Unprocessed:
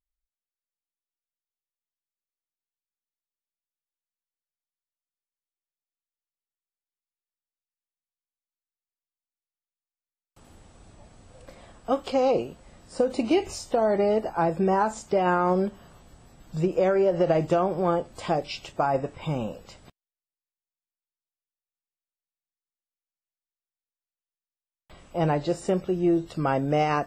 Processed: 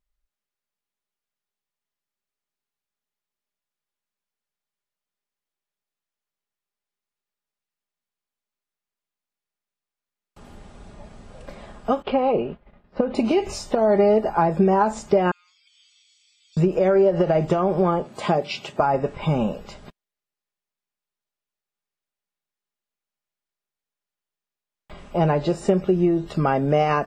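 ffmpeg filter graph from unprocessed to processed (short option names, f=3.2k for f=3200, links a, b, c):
-filter_complex "[0:a]asettb=1/sr,asplit=3[a][b][c];[a]atrim=end=12.024[d];[b]atrim=start=12.02:end=13.15,asetpts=PTS-STARTPTS,afade=t=in:d=0.004:c=qsin,afade=t=out:st=1.126:d=0.004:c=qsin,lowpass=f=3.2k:w=0.5412,lowpass=f=3.2k:w=1.3066,agate=range=-33dB:threshold=-43dB:ratio=3:release=100:detection=peak[e];[c]atrim=start=13.146[f];[d][e]acrossfade=d=0.004:c1=hsin:c2=qsin[g];[g][f]acrossfade=d=0.004:c1=qsin:c2=hsin,asettb=1/sr,asplit=3[h][i][j];[h]atrim=end=15.314[k];[i]atrim=start=15.31:end=16.57,asetpts=PTS-STARTPTS,afade=t=in:d=0.004:c=qsin,afade=t=out:st=1.256:d=0.004:c=qsin,aecho=1:1:0.9:0.78,atrim=end_sample=55566,acompressor=threshold=-29dB:ratio=6:attack=3.2:release=140:knee=1:detection=peak,asuperpass=centerf=4600:order=8:qfactor=0.91[l];[j]atrim=start=16.566[m];[k][l]acrossfade=d=0.004:c1=hsin:c2=qsin[n];[n][m]acrossfade=d=0.004:c1=qsin:c2=hsin,asettb=1/sr,asplit=3[o][p][q];[o]atrim=end=18.044[r];[p]atrim=start=18.04:end=18.8,asetpts=PTS-STARTPTS,afade=t=in:d=0.004:c=qsin,afade=t=out:st=0.756:d=0.004:c=qsin,highpass=f=110:w=0.5412,highpass=f=110:w=1.3066,bandreject=f=5.2k:w=17[s];[q]atrim=start=18.796[t];[r][s]acrossfade=d=0.004:c1=hsin:c2=qsin[u];[u][t]acrossfade=d=0.004:c1=qsin:c2=hsin,acompressor=threshold=-24dB:ratio=6,highshelf=f=4.9k:g=-9.5,aecho=1:1:4.9:0.39,volume=8dB"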